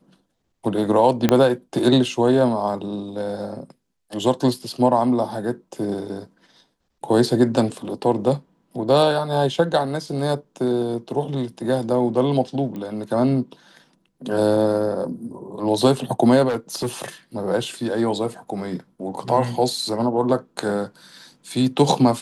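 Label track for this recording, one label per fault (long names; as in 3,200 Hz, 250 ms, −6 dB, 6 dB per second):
1.290000	1.290000	click −3 dBFS
12.760000	12.760000	click −21 dBFS
16.480000	17.050000	clipping −19.5 dBFS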